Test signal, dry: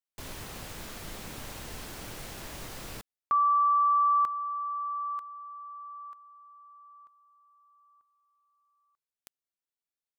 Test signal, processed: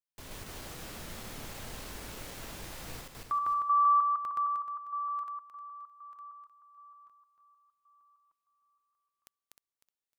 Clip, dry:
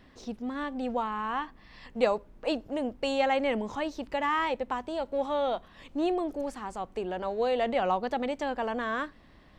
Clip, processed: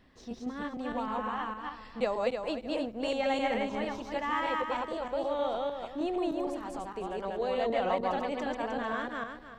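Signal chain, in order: regenerating reverse delay 0.154 s, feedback 49%, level 0 dB; gain -5.5 dB

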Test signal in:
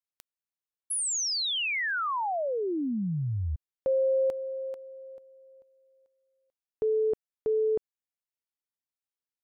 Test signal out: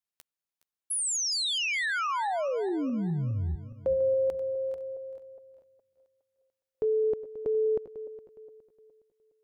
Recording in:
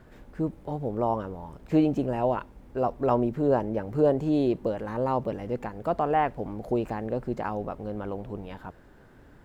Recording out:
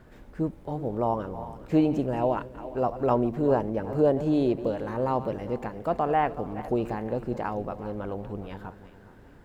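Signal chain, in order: regenerating reverse delay 0.207 s, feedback 58%, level -13.5 dB

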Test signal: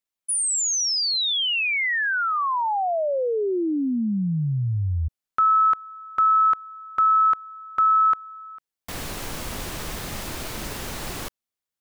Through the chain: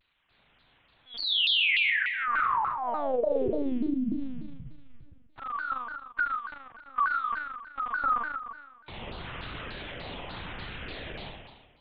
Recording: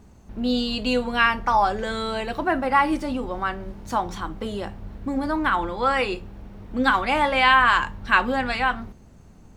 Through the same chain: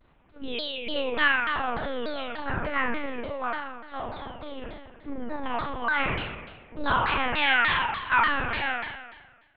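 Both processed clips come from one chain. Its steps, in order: gate with hold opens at -29 dBFS, closes at -38 dBFS, hold 0.375 s, range -27 dB; HPF 200 Hz 24 dB/oct; spectral noise reduction 20 dB; low shelf 310 Hz -4.5 dB; upward compressor 4:1, threshold -36 dBFS; LFO notch saw up 0.87 Hz 500–2000 Hz; short-mantissa float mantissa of 4-bit; on a send: flutter echo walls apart 7.3 m, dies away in 1.3 s; on the sum: monotone LPC vocoder at 8 kHz 270 Hz; shaped vibrato saw down 3.4 Hz, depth 250 cents; gain -5 dB

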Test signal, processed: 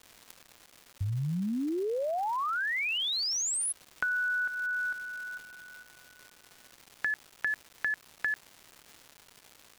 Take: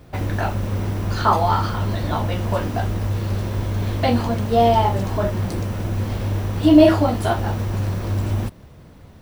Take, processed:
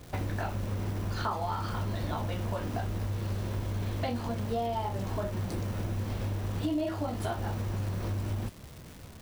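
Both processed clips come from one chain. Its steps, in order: compressor, threshold -26 dBFS; crackle 480/s -37 dBFS; gain -3.5 dB

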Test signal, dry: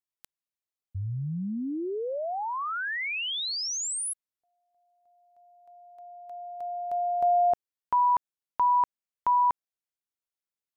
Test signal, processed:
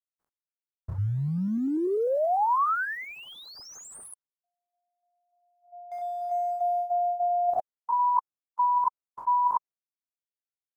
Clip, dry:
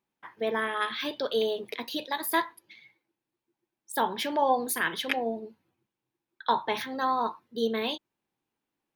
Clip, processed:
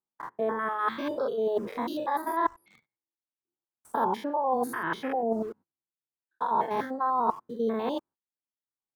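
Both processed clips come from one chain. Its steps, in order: stepped spectrum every 0.1 s; in parallel at -4 dB: requantised 8-bit, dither none; on the sum: gate -53 dBFS, range -21 dB; reverse; compressor 16:1, threshold -32 dBFS; reverse; resonant high shelf 1800 Hz -13.5 dB, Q 1.5; reverb removal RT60 0.72 s; gain +8.5 dB

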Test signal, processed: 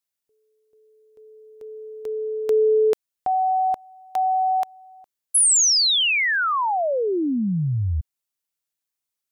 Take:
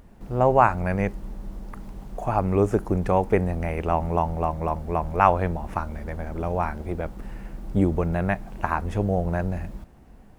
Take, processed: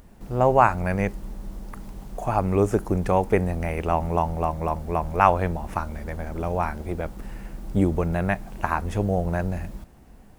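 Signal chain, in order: high shelf 3900 Hz +7 dB

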